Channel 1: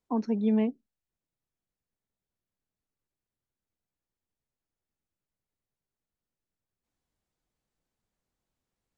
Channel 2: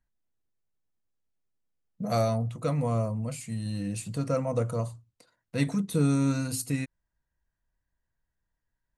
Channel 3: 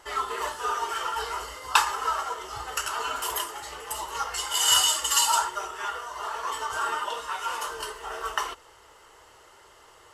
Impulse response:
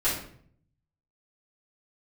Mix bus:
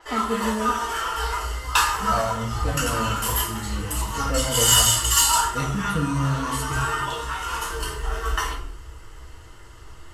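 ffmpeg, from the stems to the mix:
-filter_complex "[0:a]volume=-2dB,asplit=2[a][b];[b]volume=-17dB[c];[1:a]asplit=2[d][e];[e]adelay=6.9,afreqshift=-1.9[f];[d][f]amix=inputs=2:normalize=1,volume=-1dB,asplit=2[g][h];[h]volume=-11dB[i];[2:a]asubboost=boost=8.5:cutoff=190,asoftclip=type=tanh:threshold=-10dB,adynamicequalizer=threshold=0.00891:dfrequency=7200:dqfactor=0.7:tfrequency=7200:tqfactor=0.7:attack=5:release=100:ratio=0.375:range=2.5:mode=boostabove:tftype=highshelf,volume=-3dB,asplit=2[j][k];[k]volume=-5.5dB[l];[3:a]atrim=start_sample=2205[m];[c][i][l]amix=inputs=3:normalize=0[n];[n][m]afir=irnorm=-1:irlink=0[o];[a][g][j][o]amix=inputs=4:normalize=0"

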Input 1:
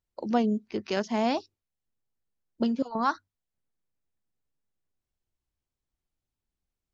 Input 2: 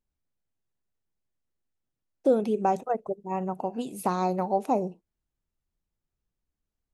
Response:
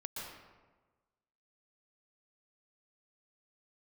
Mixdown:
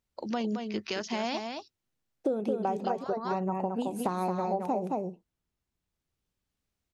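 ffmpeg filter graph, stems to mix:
-filter_complex "[0:a]tiltshelf=f=1.4k:g=-6,alimiter=limit=-20dB:level=0:latency=1:release=45,volume=2dB,asplit=2[a][b];[b]volume=-7.5dB[c];[1:a]highpass=56,volume=1.5dB,asplit=3[d][e][f];[e]volume=-5dB[g];[f]apad=whole_len=305898[h];[a][h]sidechaincompress=threshold=-35dB:ratio=8:attack=16:release=1290[i];[c][g]amix=inputs=2:normalize=0,aecho=0:1:219:1[j];[i][d][j]amix=inputs=3:normalize=0,highshelf=f=5.7k:g=-7.5,acompressor=threshold=-26dB:ratio=6"

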